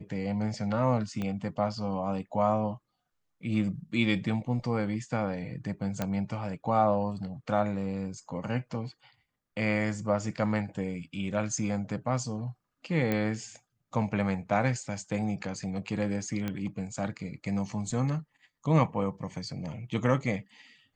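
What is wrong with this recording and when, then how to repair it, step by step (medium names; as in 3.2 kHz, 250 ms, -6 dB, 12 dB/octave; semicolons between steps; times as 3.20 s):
1.22 s: pop -21 dBFS
6.02 s: pop -15 dBFS
13.12 s: pop -16 dBFS
16.48 s: pop -19 dBFS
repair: de-click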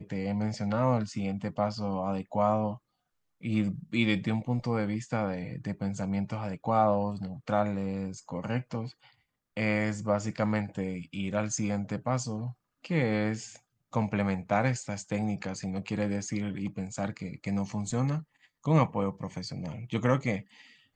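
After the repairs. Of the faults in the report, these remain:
1.22 s: pop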